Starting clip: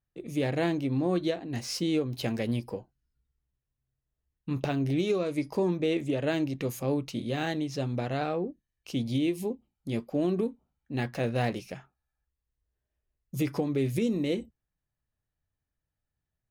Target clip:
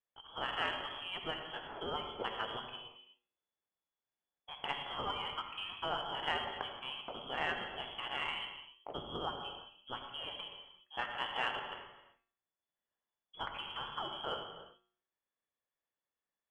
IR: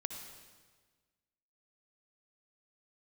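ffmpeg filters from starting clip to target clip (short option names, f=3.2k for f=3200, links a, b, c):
-filter_complex "[0:a]lowshelf=f=320:g=-11.5,bandreject=f=112:t=h:w=4,bandreject=f=224:t=h:w=4,bandreject=f=336:t=h:w=4,bandreject=f=448:t=h:w=4,bandreject=f=560:t=h:w=4,bandreject=f=672:t=h:w=4,bandreject=f=784:t=h:w=4,bandreject=f=896:t=h:w=4,bandreject=f=1.008k:t=h:w=4,bandreject=f=1.12k:t=h:w=4,bandreject=f=1.232k:t=h:w=4,bandreject=f=1.344k:t=h:w=4,bandreject=f=1.456k:t=h:w=4,bandreject=f=1.568k:t=h:w=4,bandreject=f=1.68k:t=h:w=4,bandreject=f=1.792k:t=h:w=4,bandreject=f=1.904k:t=h:w=4,bandreject=f=2.016k:t=h:w=4,bandreject=f=2.128k:t=h:w=4,bandreject=f=2.24k:t=h:w=4,bandreject=f=2.352k:t=h:w=4,bandreject=f=2.464k:t=h:w=4,bandreject=f=2.576k:t=h:w=4,bandreject=f=2.688k:t=h:w=4,bandreject=f=2.8k:t=h:w=4,bandreject=f=2.912k:t=h:w=4,bandreject=f=3.024k:t=h:w=4,bandreject=f=3.136k:t=h:w=4,bandreject=f=3.248k:t=h:w=4,bandreject=f=3.36k:t=h:w=4,bandreject=f=3.472k:t=h:w=4,bandreject=f=3.584k:t=h:w=4,bandreject=f=3.696k:t=h:w=4,bandreject=f=3.808k:t=h:w=4,acrossover=split=650[a][b];[a]acompressor=threshold=-37dB:ratio=6[c];[c][b]amix=inputs=2:normalize=0,lowpass=f=3k:t=q:w=0.5098,lowpass=f=3k:t=q:w=0.6013,lowpass=f=3k:t=q:w=0.9,lowpass=f=3k:t=q:w=2.563,afreqshift=-3500[d];[1:a]atrim=start_sample=2205,afade=t=out:st=0.44:d=0.01,atrim=end_sample=19845[e];[d][e]afir=irnorm=-1:irlink=0,adynamicsmooth=sensitivity=0.5:basefreq=1.1k,volume=11dB"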